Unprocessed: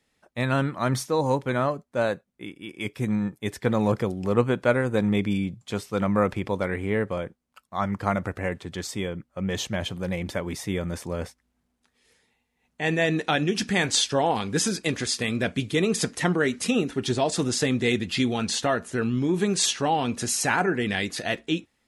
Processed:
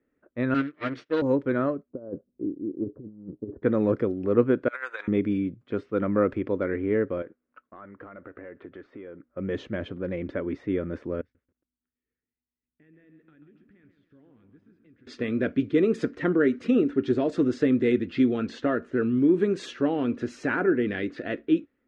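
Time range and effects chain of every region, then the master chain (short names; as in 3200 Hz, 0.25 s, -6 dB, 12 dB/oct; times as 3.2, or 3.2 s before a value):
0.54–1.22 minimum comb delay 6.6 ms + weighting filter D + upward expander 2.5:1, over -37 dBFS
1.89–3.63 Gaussian blur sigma 11 samples + negative-ratio compressor -33 dBFS, ratio -0.5
4.68–5.08 HPF 860 Hz 24 dB/oct + high shelf 2200 Hz +11.5 dB + negative-ratio compressor -31 dBFS, ratio -0.5
7.22–9.29 block floating point 7-bit + compressor, threshold -39 dBFS + overdrive pedal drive 12 dB, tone 2800 Hz, clips at -26 dBFS
11.21–15.07 passive tone stack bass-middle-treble 6-0-2 + compressor, threshold -52 dBFS + lo-fi delay 0.137 s, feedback 55%, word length 11-bit, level -7 dB
whole clip: low-pass opened by the level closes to 1900 Hz, open at -19 dBFS; EQ curve 190 Hz 0 dB, 280 Hz +12 dB, 570 Hz +5 dB, 820 Hz -8 dB, 1400 Hz +4 dB, 13000 Hz -28 dB; gain -5.5 dB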